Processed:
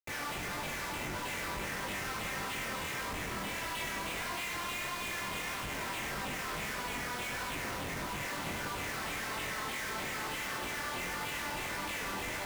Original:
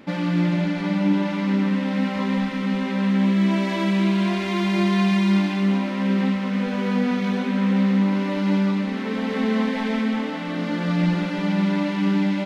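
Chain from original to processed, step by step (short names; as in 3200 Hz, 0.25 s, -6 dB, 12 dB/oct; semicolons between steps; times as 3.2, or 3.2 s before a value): limiter -21 dBFS, peak gain reduction 10.5 dB; LFO high-pass saw down 3.2 Hz 890–3000 Hz; Schmitt trigger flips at -39 dBFS; chorus 1.6 Hz, delay 19.5 ms, depth 5.5 ms; split-band echo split 600 Hz, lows 0.503 s, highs 99 ms, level -8.5 dB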